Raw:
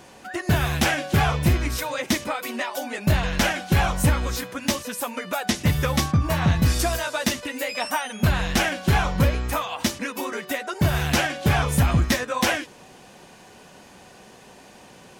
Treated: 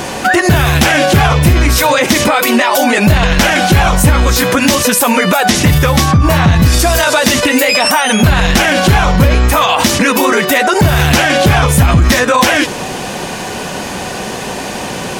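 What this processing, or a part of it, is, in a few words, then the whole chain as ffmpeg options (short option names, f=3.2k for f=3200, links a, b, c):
loud club master: -af "acompressor=threshold=-23dB:ratio=2.5,asoftclip=type=hard:threshold=-16.5dB,alimiter=level_in=27.5dB:limit=-1dB:release=50:level=0:latency=1,volume=-1dB"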